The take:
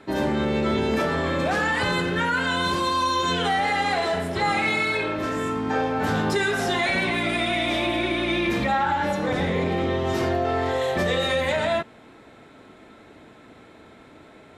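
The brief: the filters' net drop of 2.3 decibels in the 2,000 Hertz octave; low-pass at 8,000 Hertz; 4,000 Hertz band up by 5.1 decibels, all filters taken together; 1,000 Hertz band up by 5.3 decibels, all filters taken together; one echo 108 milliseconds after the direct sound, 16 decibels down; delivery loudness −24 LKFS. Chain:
low-pass filter 8,000 Hz
parametric band 1,000 Hz +8 dB
parametric band 2,000 Hz −7.5 dB
parametric band 4,000 Hz +8 dB
single-tap delay 108 ms −16 dB
level −3 dB

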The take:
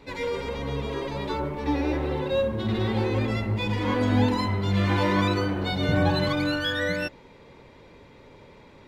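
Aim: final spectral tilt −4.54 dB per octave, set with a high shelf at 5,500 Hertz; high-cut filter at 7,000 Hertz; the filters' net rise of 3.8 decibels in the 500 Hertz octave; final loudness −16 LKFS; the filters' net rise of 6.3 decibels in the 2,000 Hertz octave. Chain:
low-pass filter 7,000 Hz
parametric band 500 Hz +4 dB
parametric band 2,000 Hz +8.5 dB
high-shelf EQ 5,500 Hz −4.5 dB
level +7.5 dB

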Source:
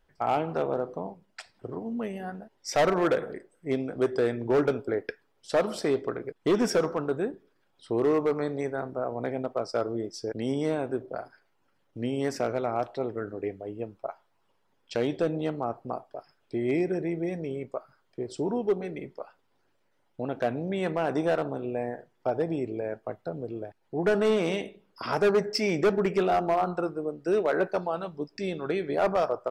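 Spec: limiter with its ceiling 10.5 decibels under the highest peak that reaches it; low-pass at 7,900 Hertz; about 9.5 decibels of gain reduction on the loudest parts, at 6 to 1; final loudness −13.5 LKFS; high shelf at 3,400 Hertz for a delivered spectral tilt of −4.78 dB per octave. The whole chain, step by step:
low-pass filter 7,900 Hz
high-shelf EQ 3,400 Hz +7.5 dB
downward compressor 6 to 1, threshold −30 dBFS
level +24 dB
brickwall limiter −3 dBFS

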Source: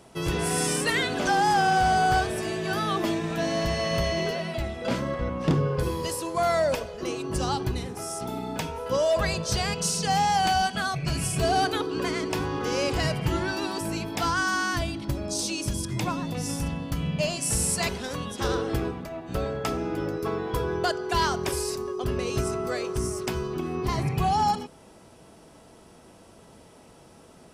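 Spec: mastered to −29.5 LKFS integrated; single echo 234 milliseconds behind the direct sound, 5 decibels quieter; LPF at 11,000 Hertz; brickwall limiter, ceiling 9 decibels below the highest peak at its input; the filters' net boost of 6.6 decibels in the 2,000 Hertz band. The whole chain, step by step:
low-pass filter 11,000 Hz
parametric band 2,000 Hz +9 dB
brickwall limiter −17.5 dBFS
single-tap delay 234 ms −5 dB
level −3 dB

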